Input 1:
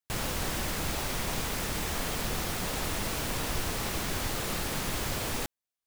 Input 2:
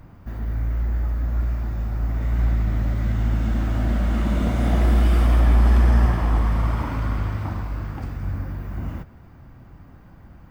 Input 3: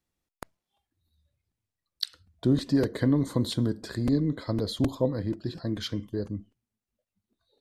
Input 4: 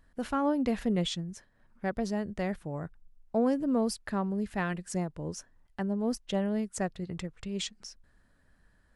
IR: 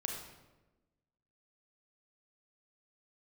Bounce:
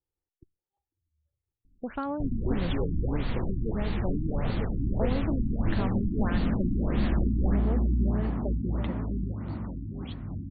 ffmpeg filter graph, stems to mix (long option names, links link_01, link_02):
-filter_complex "[0:a]lowshelf=frequency=200:gain=11.5,adelay=2100,volume=-4.5dB[link_01];[1:a]equalizer=frequency=220:width=0.59:gain=12.5,adelay=2050,volume=-16dB,asplit=2[link_02][link_03];[link_03]volume=-6dB[link_04];[2:a]lowpass=1000,aecho=1:1:2.3:0.65,volume=-9dB[link_05];[3:a]acompressor=threshold=-30dB:ratio=6,adelay=1650,volume=1dB,asplit=2[link_06][link_07];[link_07]volume=-9.5dB[link_08];[link_04][link_08]amix=inputs=2:normalize=0,aecho=0:1:804:1[link_09];[link_01][link_02][link_05][link_06][link_09]amix=inputs=5:normalize=0,afftfilt=real='re*lt(b*sr/1024,340*pow(4700/340,0.5+0.5*sin(2*PI*1.6*pts/sr)))':imag='im*lt(b*sr/1024,340*pow(4700/340,0.5+0.5*sin(2*PI*1.6*pts/sr)))':win_size=1024:overlap=0.75"